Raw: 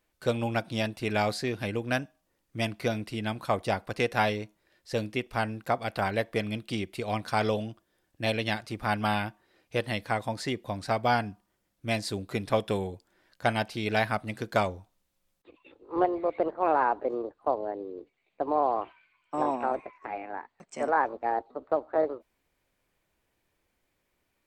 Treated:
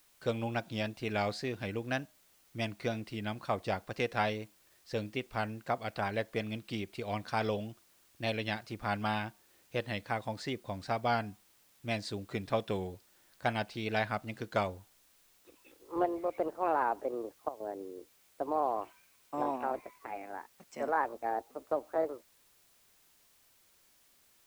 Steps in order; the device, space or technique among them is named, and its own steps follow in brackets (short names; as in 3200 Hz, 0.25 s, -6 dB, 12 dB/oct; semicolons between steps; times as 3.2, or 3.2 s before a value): worn cassette (LPF 7100 Hz; wow and flutter; level dips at 17.49, 0.111 s -13 dB; white noise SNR 30 dB); gain -5.5 dB